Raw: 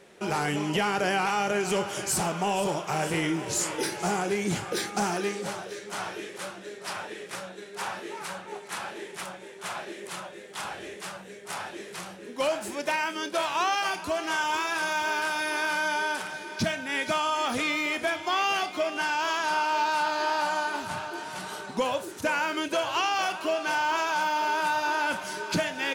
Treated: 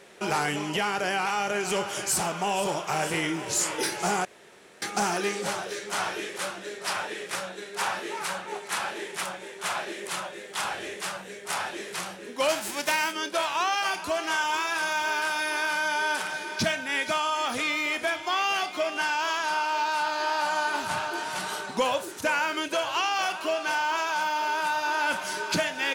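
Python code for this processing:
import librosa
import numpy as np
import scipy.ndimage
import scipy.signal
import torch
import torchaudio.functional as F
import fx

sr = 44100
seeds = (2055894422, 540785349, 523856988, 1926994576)

y = fx.envelope_flatten(x, sr, power=0.6, at=(12.48, 13.11), fade=0.02)
y = fx.edit(y, sr, fx.room_tone_fill(start_s=4.25, length_s=0.57), tone=tone)
y = fx.rider(y, sr, range_db=3, speed_s=0.5)
y = fx.low_shelf(y, sr, hz=460.0, db=-6.5)
y = y * 10.0 ** (3.0 / 20.0)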